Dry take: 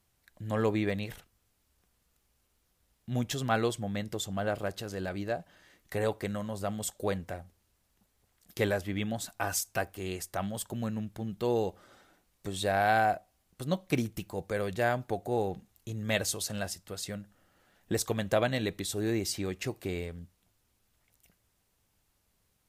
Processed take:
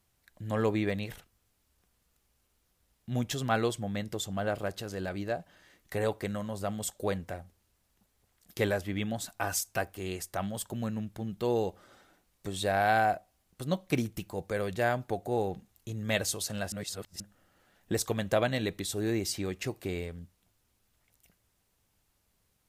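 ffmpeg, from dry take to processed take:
-filter_complex "[0:a]asplit=3[a][b][c];[a]atrim=end=16.722[d];[b]atrim=start=16.718:end=17.202,asetpts=PTS-STARTPTS,areverse[e];[c]atrim=start=17.198[f];[d][e]acrossfade=d=0.004:c1=hsin:c2=hsin[g];[g][f]acrossfade=d=0.004:c1=hsin:c2=hsin"

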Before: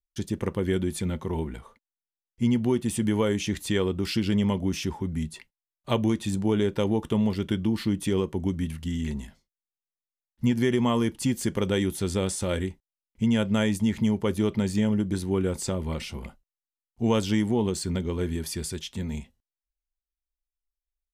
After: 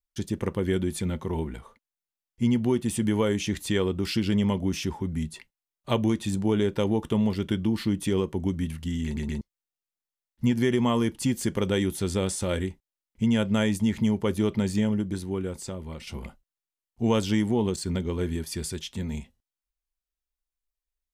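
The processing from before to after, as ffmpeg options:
-filter_complex "[0:a]asettb=1/sr,asplit=3[a][b][c];[a]atrim=end=17.764[d];[b]atrim=start=17.76:end=18.52,asetpts=PTS-STARTPTS,afade=t=in:d=0.004:c=qsin,afade=t=out:st=0.756:d=0.004:c=qsin,agate=range=-33dB:threshold=-32dB:ratio=3:release=100:detection=peak[e];[c]atrim=start=18.516[f];[d][e]acrossfade=d=0.004:c1=hsin:c2=qsin[g];[g][f]acrossfade=d=0.004:c1=qsin:c2=hsin,asplit=5[h][i][j][k][l];[h]atrim=end=9.172[m];[i]atrim=start=9.048:end=9.172[n];[j]atrim=start=9.048:end=9.172[o];[k]atrim=start=9.408:end=16.07,asetpts=PTS-STARTPTS,afade=t=out:st=5.342:d=1.32:c=qua:silence=0.421697[p];[l]atrim=start=16.07,asetpts=PTS-STARTPTS,afade=t=in:d=0.004:c=hsin:silence=0.421697[q];[m][n]acrossfade=d=0.004:c1=hsin:c2=hsin[r];[r][o]acrossfade=d=0.004:c1=hsin:c2=hsin[s];[p][q]concat=n=2:v=0:a=1[t];[s][t]acrossfade=d=0.004:c1=hsin:c2=hsin"

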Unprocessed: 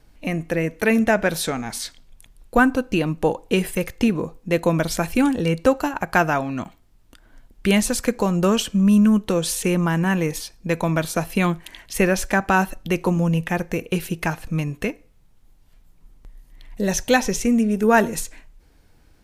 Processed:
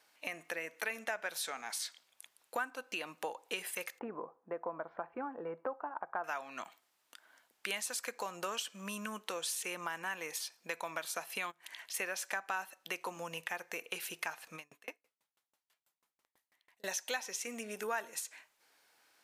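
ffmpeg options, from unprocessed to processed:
-filter_complex "[0:a]asettb=1/sr,asplit=3[a][b][c];[a]atrim=end=3.994[d];[b]atrim=start=3.99:end=6.24,asetpts=PTS-STARTPTS,afade=t=in:d=0.004:c=qsin,afade=t=out:st=2.246:d=0.004:c=qsin,lowpass=f=1.2k:w=0.5412,lowpass=f=1.2k:w=1.3066[e];[c]atrim=start=6.236[f];[d][e]acrossfade=d=0.004:c1=hsin:c2=qsin[g];[g][f]acrossfade=d=0.004:c1=qsin:c2=hsin,asplit=3[h][i][j];[h]afade=t=out:st=11.5:d=0.02[k];[i]acompressor=threshold=-38dB:ratio=6:attack=3.2:release=140:knee=1:detection=peak,afade=t=in:st=11.5:d=0.02,afade=t=out:st=11.93:d=0.02[l];[j]afade=t=in:st=11.93:d=0.02[m];[k][l][m]amix=inputs=3:normalize=0,asettb=1/sr,asplit=3[n][o][p];[n]atrim=end=14.554[q];[o]atrim=start=14.55:end=16.84,asetpts=PTS-STARTPTS,afade=t=in:d=0.004:c=qsin,afade=t=out:st=2.286:d=0.004:c=qsin,aeval=exprs='val(0)*pow(10,-36*if(lt(mod(6.1*n/s,1),2*abs(6.1)/1000),1-mod(6.1*n/s,1)/(2*abs(6.1)/1000),(mod(6.1*n/s,1)-2*abs(6.1)/1000)/(1-2*abs(6.1)/1000))/20)':c=same[r];[p]atrim=start=16.836[s];[q][r]acrossfade=d=0.004:c1=hsin:c2=qsin[t];[t][s]acrossfade=d=0.004:c1=qsin:c2=hsin,highpass=860,acompressor=threshold=-35dB:ratio=3,volume=-3dB"

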